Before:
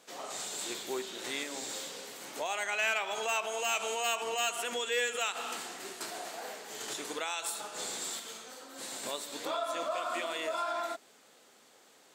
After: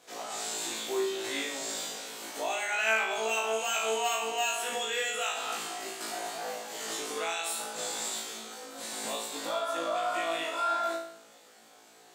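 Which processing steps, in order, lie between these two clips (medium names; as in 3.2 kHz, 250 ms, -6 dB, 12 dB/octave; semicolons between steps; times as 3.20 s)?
peaking EQ 730 Hz +4.5 dB 0.24 oct; in parallel at -0.5 dB: peak limiter -29 dBFS, peak gain reduction 9 dB; on the sum: flutter echo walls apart 3.1 m, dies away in 0.6 s; trim -6.5 dB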